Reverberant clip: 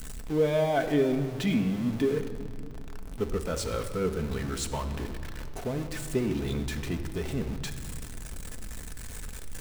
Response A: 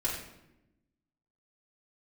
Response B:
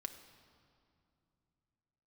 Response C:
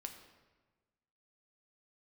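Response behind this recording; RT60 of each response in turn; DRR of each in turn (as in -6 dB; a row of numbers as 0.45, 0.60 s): B; 0.90, 2.6, 1.3 s; -6.5, 6.0, 4.5 dB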